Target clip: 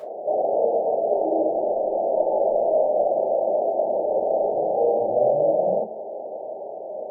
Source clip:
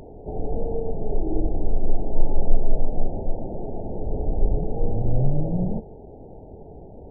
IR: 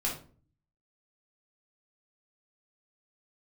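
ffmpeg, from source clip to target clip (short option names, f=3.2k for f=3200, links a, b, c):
-filter_complex "[0:a]highpass=f=610:t=q:w=4.9[a];[1:a]atrim=start_sample=2205,asetrate=66150,aresample=44100[b];[a][b]afir=irnorm=-1:irlink=0,volume=3dB"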